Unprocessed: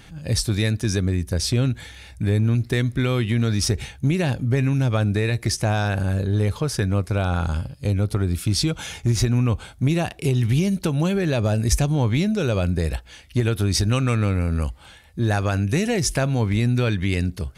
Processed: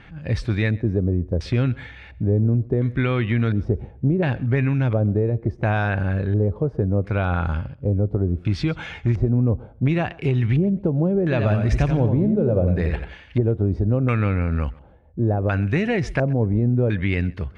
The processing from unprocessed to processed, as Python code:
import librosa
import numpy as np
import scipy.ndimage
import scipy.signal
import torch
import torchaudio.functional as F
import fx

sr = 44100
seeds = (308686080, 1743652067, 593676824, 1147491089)

y = fx.filter_lfo_lowpass(x, sr, shape='square', hz=0.71, low_hz=550.0, high_hz=2100.0, q=1.4)
y = fx.echo_feedback(y, sr, ms=130, feedback_pct=18, wet_db=-23.0)
y = fx.echo_warbled(y, sr, ms=87, feedback_pct=32, rate_hz=2.8, cents=71, wet_db=-6.5, at=(11.22, 13.38))